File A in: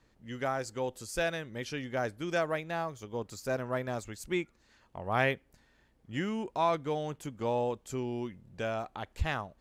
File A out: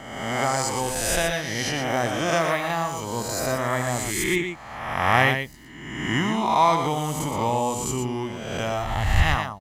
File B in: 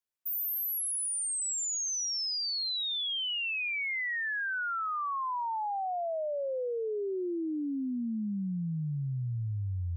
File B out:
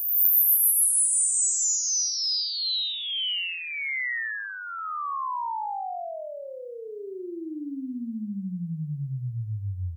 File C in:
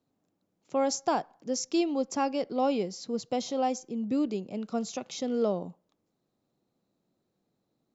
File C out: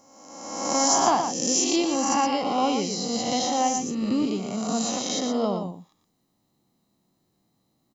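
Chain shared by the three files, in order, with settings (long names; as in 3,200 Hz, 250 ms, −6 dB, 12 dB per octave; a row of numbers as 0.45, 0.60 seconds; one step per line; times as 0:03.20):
peak hold with a rise ahead of every peak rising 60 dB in 1.27 s
high-shelf EQ 5,400 Hz +8 dB
comb filter 1 ms, depth 44%
on a send: single-tap delay 119 ms −7 dB
on the sum: loudness normalisation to −24 LKFS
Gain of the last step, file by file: +6.5, −1.5, +2.5 decibels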